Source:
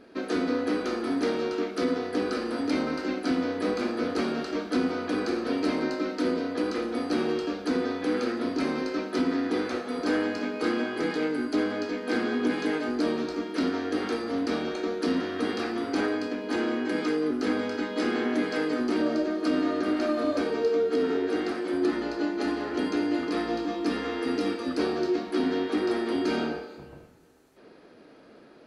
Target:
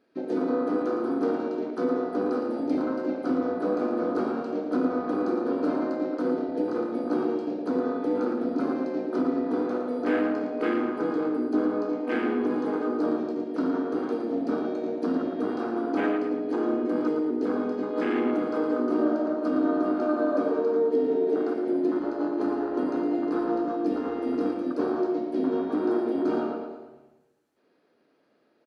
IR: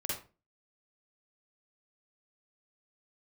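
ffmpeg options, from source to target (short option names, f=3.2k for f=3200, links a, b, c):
-filter_complex "[0:a]afwtdn=0.0282,highpass=f=180:p=1,asplit=2[a][b];[b]adelay=113,lowpass=f=3.8k:p=1,volume=-5dB,asplit=2[c][d];[d]adelay=113,lowpass=f=3.8k:p=1,volume=0.51,asplit=2[e][f];[f]adelay=113,lowpass=f=3.8k:p=1,volume=0.51,asplit=2[g][h];[h]adelay=113,lowpass=f=3.8k:p=1,volume=0.51,asplit=2[i][j];[j]adelay=113,lowpass=f=3.8k:p=1,volume=0.51,asplit=2[k][l];[l]adelay=113,lowpass=f=3.8k:p=1,volume=0.51[m];[a][c][e][g][i][k][m]amix=inputs=7:normalize=0,asplit=2[n][o];[1:a]atrim=start_sample=2205[p];[o][p]afir=irnorm=-1:irlink=0,volume=-14dB[q];[n][q]amix=inputs=2:normalize=0"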